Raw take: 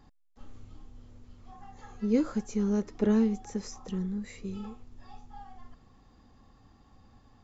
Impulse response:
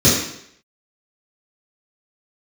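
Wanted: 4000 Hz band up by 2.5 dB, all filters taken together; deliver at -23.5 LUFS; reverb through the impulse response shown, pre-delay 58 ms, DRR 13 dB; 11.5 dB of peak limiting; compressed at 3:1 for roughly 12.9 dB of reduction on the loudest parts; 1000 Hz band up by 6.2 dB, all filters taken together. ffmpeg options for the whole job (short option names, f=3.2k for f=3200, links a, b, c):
-filter_complex "[0:a]equalizer=f=1k:t=o:g=8,equalizer=f=4k:t=o:g=3,acompressor=threshold=-38dB:ratio=3,alimiter=level_in=13.5dB:limit=-24dB:level=0:latency=1,volume=-13.5dB,asplit=2[a][b];[1:a]atrim=start_sample=2205,adelay=58[c];[b][c]afir=irnorm=-1:irlink=0,volume=-35.5dB[d];[a][d]amix=inputs=2:normalize=0,volume=22.5dB"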